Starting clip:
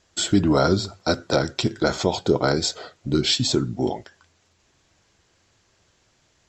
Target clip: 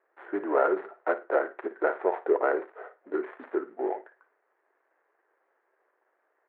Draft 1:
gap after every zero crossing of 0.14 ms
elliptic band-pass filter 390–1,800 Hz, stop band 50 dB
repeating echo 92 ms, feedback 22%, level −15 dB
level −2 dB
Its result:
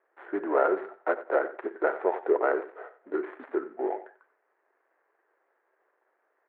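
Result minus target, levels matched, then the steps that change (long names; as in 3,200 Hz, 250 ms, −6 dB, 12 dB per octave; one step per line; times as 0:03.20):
echo 36 ms late
change: repeating echo 56 ms, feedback 22%, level −15 dB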